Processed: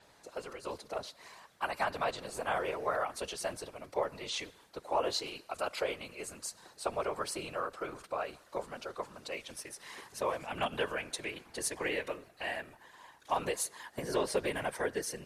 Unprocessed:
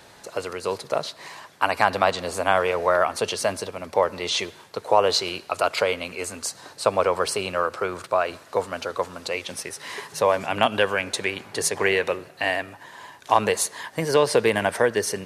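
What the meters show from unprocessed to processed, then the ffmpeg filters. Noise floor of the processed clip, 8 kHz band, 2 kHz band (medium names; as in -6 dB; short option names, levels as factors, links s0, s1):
-62 dBFS, -11.0 dB, -13.0 dB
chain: -af "afftfilt=real='hypot(re,im)*cos(2*PI*random(0))':imag='hypot(re,im)*sin(2*PI*random(1))':win_size=512:overlap=0.75,adynamicequalizer=threshold=0.00631:dfrequency=7600:dqfactor=0.7:tfrequency=7600:tqfactor=0.7:attack=5:release=100:ratio=0.375:range=2:mode=boostabove:tftype=highshelf,volume=0.447"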